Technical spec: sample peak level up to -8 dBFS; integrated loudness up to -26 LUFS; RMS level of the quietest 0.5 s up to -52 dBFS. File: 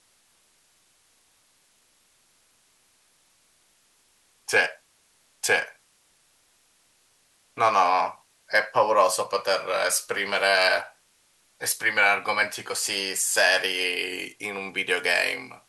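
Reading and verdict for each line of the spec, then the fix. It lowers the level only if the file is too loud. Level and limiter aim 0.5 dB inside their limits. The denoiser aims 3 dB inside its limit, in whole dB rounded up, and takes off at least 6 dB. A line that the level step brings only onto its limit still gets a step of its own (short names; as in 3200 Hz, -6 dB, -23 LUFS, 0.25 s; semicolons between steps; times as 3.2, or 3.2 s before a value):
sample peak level -6.5 dBFS: fail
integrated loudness -23.5 LUFS: fail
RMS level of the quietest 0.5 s -64 dBFS: OK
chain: gain -3 dB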